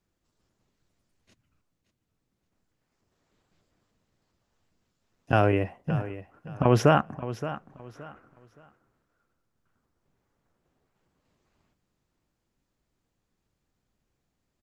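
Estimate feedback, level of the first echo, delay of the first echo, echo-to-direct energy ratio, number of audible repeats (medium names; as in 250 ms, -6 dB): 26%, -13.5 dB, 571 ms, -13.0 dB, 2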